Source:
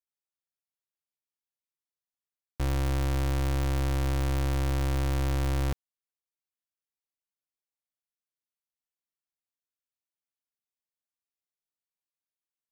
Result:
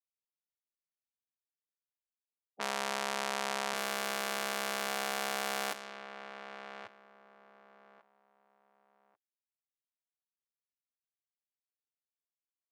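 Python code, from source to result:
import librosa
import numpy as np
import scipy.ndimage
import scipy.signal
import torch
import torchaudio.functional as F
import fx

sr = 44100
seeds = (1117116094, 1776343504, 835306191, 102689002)

y = fx.echo_feedback(x, sr, ms=1142, feedback_pct=25, wet_db=-10.0)
y = fx.env_lowpass(y, sr, base_hz=1200.0, full_db=-24.5)
y = fx.spec_gate(y, sr, threshold_db=-20, keep='weak')
y = y * librosa.db_to_amplitude(4.5)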